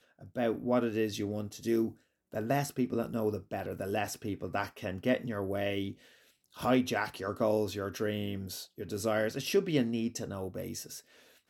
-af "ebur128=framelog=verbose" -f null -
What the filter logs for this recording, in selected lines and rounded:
Integrated loudness:
  I:         -33.4 LUFS
  Threshold: -43.7 LUFS
Loudness range:
  LRA:         2.2 LU
  Threshold: -53.7 LUFS
  LRA low:   -34.8 LUFS
  LRA high:  -32.6 LUFS